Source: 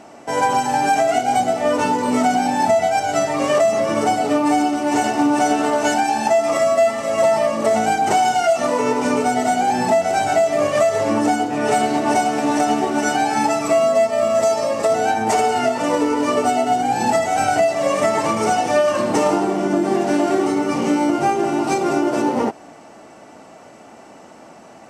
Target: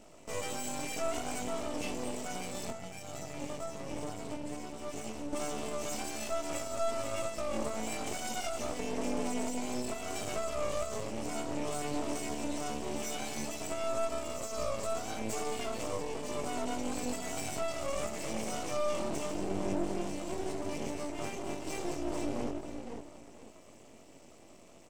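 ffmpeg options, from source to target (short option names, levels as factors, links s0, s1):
-filter_complex "[0:a]equalizer=f=1800:t=o:w=0.77:g=3,asplit=2[s0][s1];[s1]adelay=495,lowpass=f=4700:p=1,volume=0.282,asplit=2[s2][s3];[s3]adelay=495,lowpass=f=4700:p=1,volume=0.32,asplit=2[s4][s5];[s5]adelay=495,lowpass=f=4700:p=1,volume=0.32[s6];[s0][s2][s4][s6]amix=inputs=4:normalize=0,asettb=1/sr,asplit=3[s7][s8][s9];[s7]atrim=end=2.704[s10];[s8]atrim=start=2.7:end=5.33,asetpts=PTS-STARTPTS,afade=t=in:d=0.004:c=qsin,afade=t=out:st=2.626:d=0.004:c=qsin,acrossover=split=190[s11][s12];[s12]acompressor=threshold=0.0501:ratio=4[s13];[s11][s13]amix=inputs=2:normalize=0[s14];[s9]atrim=start=5.326[s15];[s10][s14]acrossfade=d=0.004:c1=hsin:c2=qsin[s16];[s16][s15]acrossfade=d=0.004:c1=qsin:c2=hsin,asuperstop=centerf=1200:order=8:qfactor=0.81,equalizer=f=7600:t=o:w=0.41:g=6,alimiter=limit=0.168:level=0:latency=1:release=46,flanger=delay=18.5:depth=3.6:speed=0.19,aeval=exprs='max(val(0),0)':c=same,volume=0.562"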